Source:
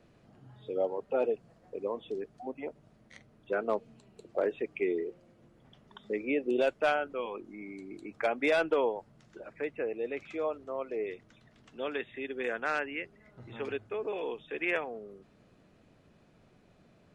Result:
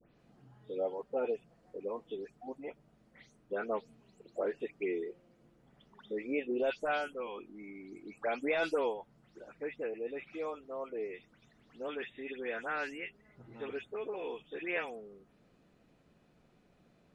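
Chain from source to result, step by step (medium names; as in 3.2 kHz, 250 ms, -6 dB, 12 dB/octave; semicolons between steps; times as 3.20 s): delay that grows with frequency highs late, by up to 184 ms; trim -4 dB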